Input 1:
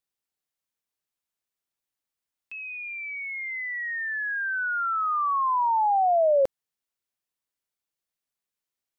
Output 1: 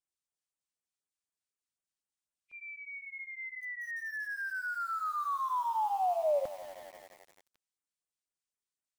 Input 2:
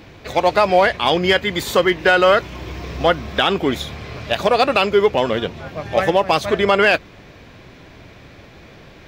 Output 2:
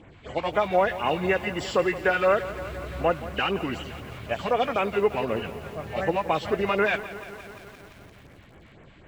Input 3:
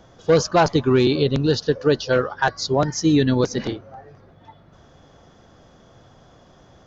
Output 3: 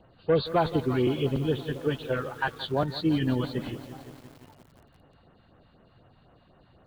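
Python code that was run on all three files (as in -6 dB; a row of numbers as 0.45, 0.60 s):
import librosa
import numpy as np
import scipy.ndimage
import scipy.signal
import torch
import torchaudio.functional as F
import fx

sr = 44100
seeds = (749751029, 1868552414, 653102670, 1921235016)

y = fx.freq_compress(x, sr, knee_hz=2000.0, ratio=1.5)
y = fx.filter_lfo_notch(y, sr, shape='sine', hz=4.0, low_hz=370.0, high_hz=4900.0, q=0.86)
y = fx.echo_crushed(y, sr, ms=172, feedback_pct=80, bits=6, wet_db=-15)
y = F.gain(torch.from_numpy(y), -7.0).numpy()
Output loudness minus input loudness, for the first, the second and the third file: -9.0, -9.0, -8.5 LU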